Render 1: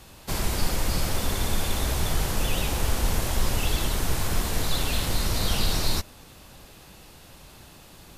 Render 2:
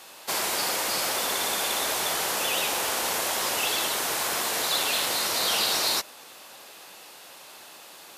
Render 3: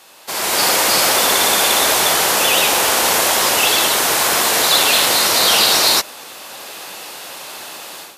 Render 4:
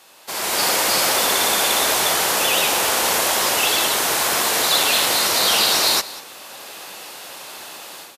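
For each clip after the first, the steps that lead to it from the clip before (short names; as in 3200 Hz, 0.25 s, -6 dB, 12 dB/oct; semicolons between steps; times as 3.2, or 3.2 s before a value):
HPF 530 Hz 12 dB/oct; gain +5 dB
AGC gain up to 13.5 dB; gain +1 dB
echo 0.194 s -17.5 dB; gain -4 dB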